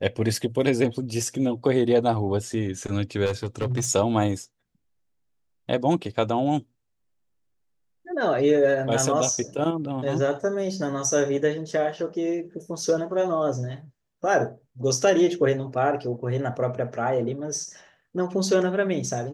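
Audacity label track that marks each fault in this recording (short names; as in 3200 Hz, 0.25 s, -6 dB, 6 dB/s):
3.250000	3.870000	clipped -21 dBFS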